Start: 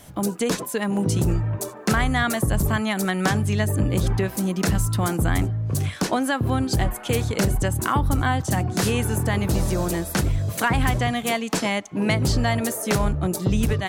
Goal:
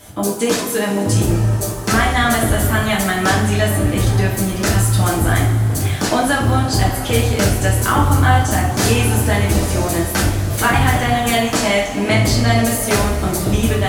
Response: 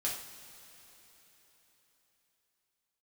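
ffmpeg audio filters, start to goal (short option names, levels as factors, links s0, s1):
-filter_complex "[0:a]equalizer=f=160:t=o:w=0.4:g=-6[s0];[1:a]atrim=start_sample=2205[s1];[s0][s1]afir=irnorm=-1:irlink=0,volume=1.68"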